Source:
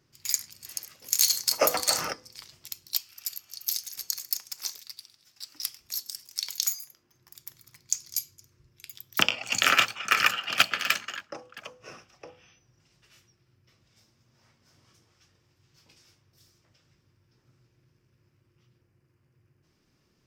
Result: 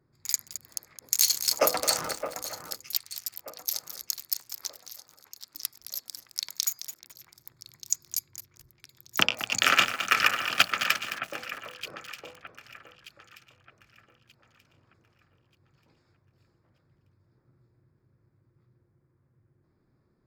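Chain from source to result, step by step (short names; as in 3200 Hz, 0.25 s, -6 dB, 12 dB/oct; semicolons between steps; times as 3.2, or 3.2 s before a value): Wiener smoothing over 15 samples; echo with dull and thin repeats by turns 0.616 s, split 2200 Hz, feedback 54%, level -10 dB; lo-fi delay 0.215 s, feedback 35%, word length 6-bit, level -10.5 dB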